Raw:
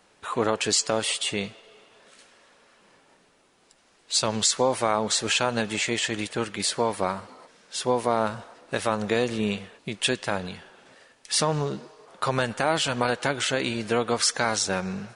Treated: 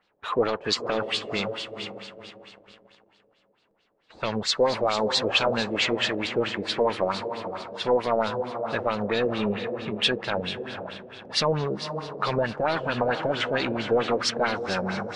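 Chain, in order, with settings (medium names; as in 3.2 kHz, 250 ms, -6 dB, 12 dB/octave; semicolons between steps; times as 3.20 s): echo that smears into a reverb 499 ms, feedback 44%, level -9.5 dB; waveshaping leveller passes 2; LFO low-pass sine 4.5 Hz 490–4400 Hz; trim -8 dB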